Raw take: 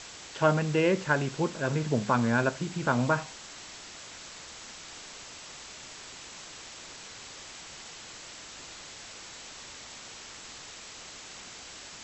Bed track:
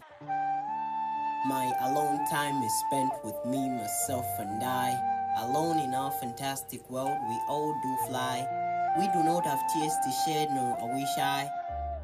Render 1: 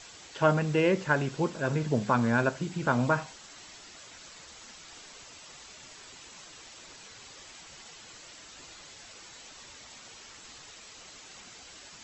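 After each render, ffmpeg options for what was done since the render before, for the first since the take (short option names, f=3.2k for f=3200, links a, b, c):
-af "afftdn=nr=7:nf=-46"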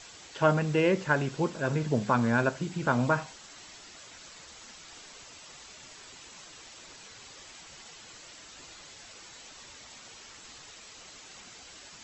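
-af anull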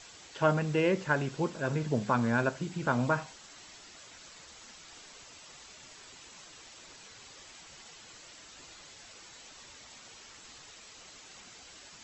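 -af "volume=-2.5dB"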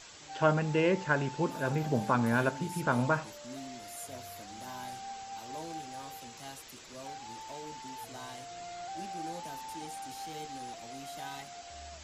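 -filter_complex "[1:a]volume=-13.5dB[a];[0:a][a]amix=inputs=2:normalize=0"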